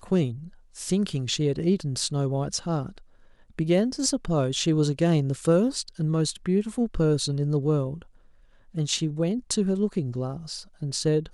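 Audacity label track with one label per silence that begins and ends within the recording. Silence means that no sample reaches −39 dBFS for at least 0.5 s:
2.980000	3.590000	silence
8.020000	8.750000	silence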